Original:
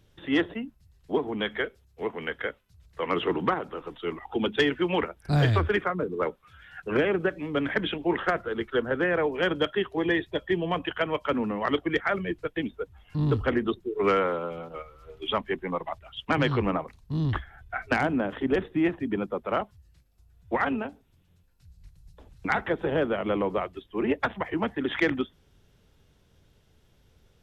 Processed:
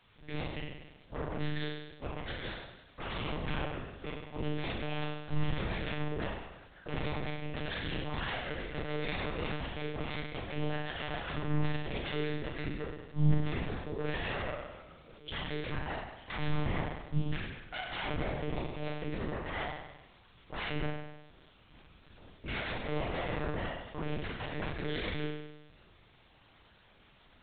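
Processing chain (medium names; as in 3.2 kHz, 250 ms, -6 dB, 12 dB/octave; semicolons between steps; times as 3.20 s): self-modulated delay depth 0.49 ms; level-controlled noise filter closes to 650 Hz, open at -26 dBFS; bass shelf 500 Hz -11 dB; band-stop 1.3 kHz, Q 10; level held to a coarse grid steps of 20 dB; added noise white -61 dBFS; flutter echo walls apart 5.7 m, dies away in 1 s; on a send at -8 dB: reverberation, pre-delay 3 ms; on the sum: monotone LPC vocoder at 8 kHz 150 Hz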